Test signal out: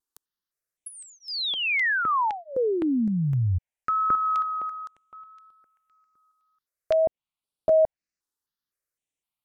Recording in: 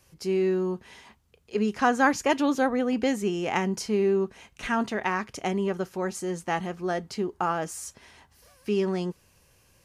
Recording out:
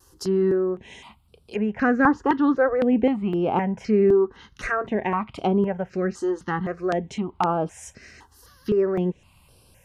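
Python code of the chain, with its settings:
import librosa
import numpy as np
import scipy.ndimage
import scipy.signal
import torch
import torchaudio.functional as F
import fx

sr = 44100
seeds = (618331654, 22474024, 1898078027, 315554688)

y = fx.env_lowpass_down(x, sr, base_hz=1500.0, full_db=-24.5)
y = fx.vibrato(y, sr, rate_hz=0.59, depth_cents=16.0)
y = fx.phaser_held(y, sr, hz=3.9, low_hz=620.0, high_hz=6600.0)
y = y * librosa.db_to_amplitude(7.5)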